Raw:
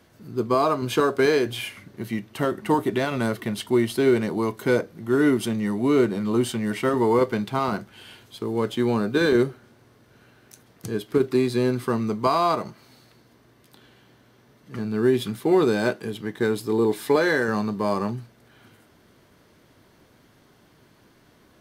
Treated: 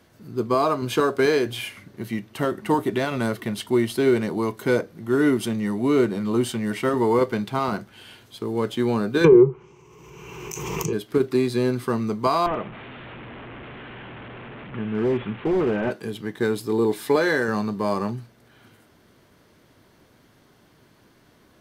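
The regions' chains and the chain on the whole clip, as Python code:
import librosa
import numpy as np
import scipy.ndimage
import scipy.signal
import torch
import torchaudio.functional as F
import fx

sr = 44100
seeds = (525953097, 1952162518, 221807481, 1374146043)

y = fx.chain(x, sr, fx.env_lowpass_down(base_hz=910.0, full_db=-18.5),
    fx.ripple_eq(per_octave=0.74, db=18),
    fx.pre_swell(db_per_s=26.0), at=(9.24, 10.93))
y = fx.chain(y, sr, fx.delta_mod(bps=16000, step_db=-33.0),
    fx.clip_hard(threshold_db=-17.5), at=(12.46, 15.91))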